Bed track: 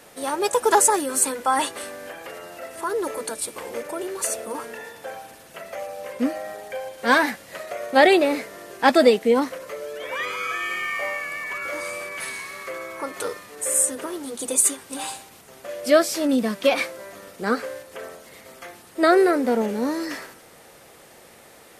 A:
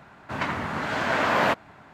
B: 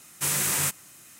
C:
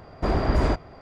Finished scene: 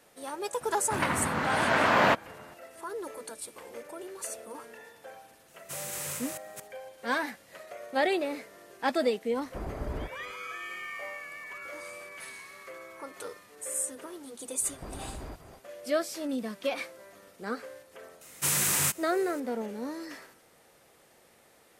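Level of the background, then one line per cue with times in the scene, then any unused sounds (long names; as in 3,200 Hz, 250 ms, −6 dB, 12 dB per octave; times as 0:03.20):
bed track −12 dB
0:00.61: mix in A −0.5 dB
0:05.48: mix in B −13 dB + delay that plays each chunk backwards 224 ms, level −2 dB
0:09.32: mix in C −14 dB + high-frequency loss of the air 230 metres
0:14.60: mix in C −5.5 dB, fades 0.05 s + downward compressor, threshold −33 dBFS
0:18.21: mix in B −1 dB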